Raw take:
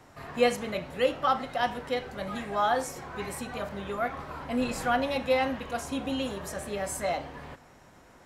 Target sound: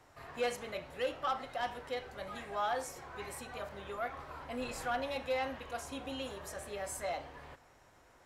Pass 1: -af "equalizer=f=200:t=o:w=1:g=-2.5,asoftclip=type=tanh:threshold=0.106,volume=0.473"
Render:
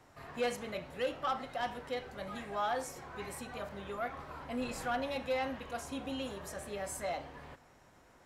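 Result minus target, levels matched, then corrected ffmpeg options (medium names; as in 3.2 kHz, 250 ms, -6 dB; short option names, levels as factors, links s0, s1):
250 Hz band +4.0 dB
-af "equalizer=f=200:t=o:w=1:g=-9.5,asoftclip=type=tanh:threshold=0.106,volume=0.473"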